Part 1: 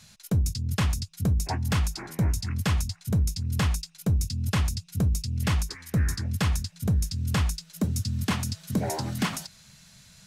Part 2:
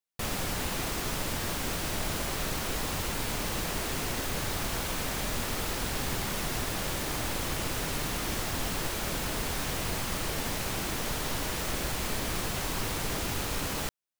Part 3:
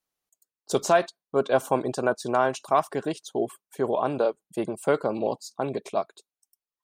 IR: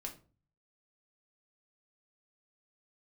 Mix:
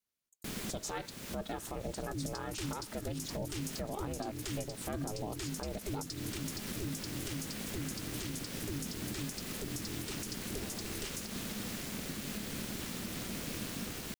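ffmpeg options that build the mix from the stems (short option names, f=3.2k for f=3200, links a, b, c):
-filter_complex "[0:a]equalizer=f=8k:w=0.37:g=11.5,adelay=1800,volume=-10dB[a];[1:a]adelay=250,volume=-4dB[b];[2:a]alimiter=limit=-15.5dB:level=0:latency=1:release=10,volume=-0.5dB,asplit=2[c][d];[d]apad=whole_len=637038[e];[b][e]sidechaincompress=threshold=-32dB:ratio=8:attack=8.1:release=438[f];[a][f][c]amix=inputs=3:normalize=0,equalizer=f=760:t=o:w=1.4:g=-9.5,aeval=exprs='val(0)*sin(2*PI*210*n/s)':c=same,alimiter=level_in=3.5dB:limit=-24dB:level=0:latency=1:release=121,volume=-3.5dB"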